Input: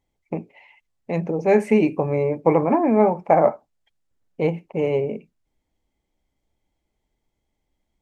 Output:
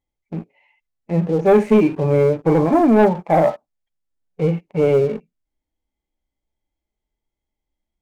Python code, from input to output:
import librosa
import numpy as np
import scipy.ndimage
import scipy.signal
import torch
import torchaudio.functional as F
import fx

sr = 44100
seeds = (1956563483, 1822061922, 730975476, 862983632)

y = fx.hpss(x, sr, part='percussive', gain_db=-17)
y = fx.leveller(y, sr, passes=2)